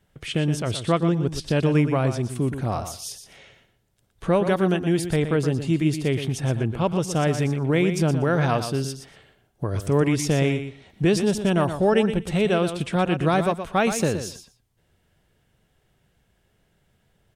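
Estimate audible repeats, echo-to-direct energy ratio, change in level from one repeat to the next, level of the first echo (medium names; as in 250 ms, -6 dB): 2, -9.5 dB, -16.5 dB, -9.5 dB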